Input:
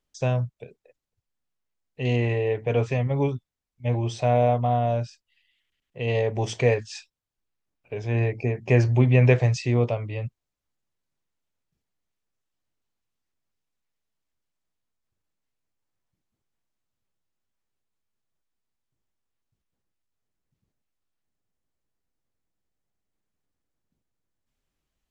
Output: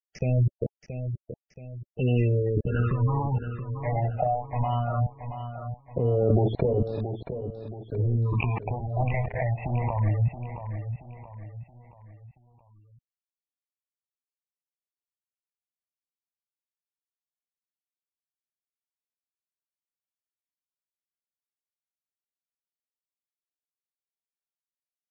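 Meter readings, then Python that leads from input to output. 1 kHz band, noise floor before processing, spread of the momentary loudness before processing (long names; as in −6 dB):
−1.5 dB, −84 dBFS, 15 LU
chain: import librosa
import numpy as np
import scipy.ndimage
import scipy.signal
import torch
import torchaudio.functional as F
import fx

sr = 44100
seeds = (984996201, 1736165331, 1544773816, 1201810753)

p1 = 10.0 ** (-12.0 / 20.0) * (np.abs((x / 10.0 ** (-12.0 / 20.0) + 3.0) % 4.0 - 2.0) - 1.0)
p2 = fx.low_shelf(p1, sr, hz=350.0, db=-7.0)
p3 = fx.level_steps(p2, sr, step_db=23)
p4 = fx.leveller(p3, sr, passes=3)
p5 = fx.over_compress(p4, sr, threshold_db=-28.0, ratio=-0.5)
p6 = fx.transient(p5, sr, attack_db=-3, sustain_db=11)
p7 = fx.quant_dither(p6, sr, seeds[0], bits=6, dither='none')
p8 = fx.phaser_stages(p7, sr, stages=6, low_hz=320.0, high_hz=2200.0, hz=0.19, feedback_pct=50)
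p9 = fx.filter_lfo_lowpass(p8, sr, shape='square', hz=1.1, low_hz=950.0, high_hz=2100.0, q=0.76)
p10 = fx.spec_gate(p9, sr, threshold_db=-20, keep='strong')
p11 = fx.air_absorb(p10, sr, metres=130.0)
p12 = p11 + fx.echo_feedback(p11, sr, ms=676, feedback_pct=41, wet_db=-9.5, dry=0)
y = F.gain(torch.from_numpy(p12), 9.0).numpy()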